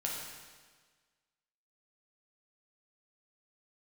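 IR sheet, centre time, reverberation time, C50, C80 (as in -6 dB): 78 ms, 1.5 s, 1.0 dB, 3.0 dB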